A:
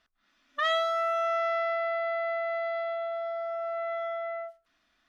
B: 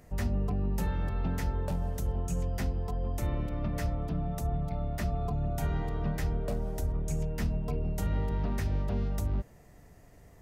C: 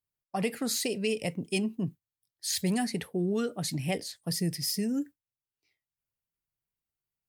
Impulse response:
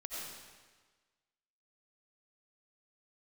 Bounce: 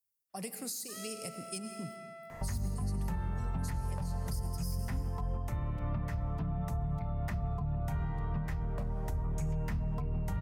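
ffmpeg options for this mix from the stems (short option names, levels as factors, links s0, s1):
-filter_complex "[0:a]adelay=300,volume=0.106[s0];[1:a]equalizer=f=125:t=o:w=1:g=6,equalizer=f=1000:t=o:w=1:g=12,equalizer=f=2000:t=o:w=1:g=6,adelay=2300,volume=1.26,asplit=2[s1][s2];[s2]volume=0.0944[s3];[2:a]aexciter=amount=5.9:drive=3.6:freq=4600,volume=0.237,asplit=2[s4][s5];[s5]volume=0.473[s6];[3:a]atrim=start_sample=2205[s7];[s3][s6]amix=inputs=2:normalize=0[s8];[s8][s7]afir=irnorm=-1:irlink=0[s9];[s0][s1][s4][s9]amix=inputs=4:normalize=0,acrossover=split=200[s10][s11];[s11]acompressor=threshold=0.0141:ratio=5[s12];[s10][s12]amix=inputs=2:normalize=0,alimiter=level_in=1.33:limit=0.0631:level=0:latency=1:release=382,volume=0.75"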